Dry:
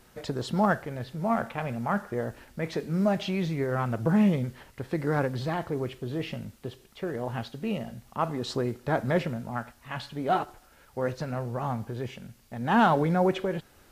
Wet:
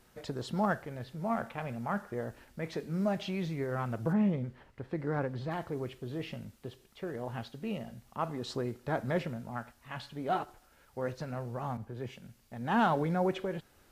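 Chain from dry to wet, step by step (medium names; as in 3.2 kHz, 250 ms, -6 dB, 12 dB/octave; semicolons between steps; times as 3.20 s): 4.12–5.50 s: low-pass 1.5 kHz -> 2.5 kHz 6 dB/octave; 11.77–12.23 s: three bands expanded up and down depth 70%; trim -6 dB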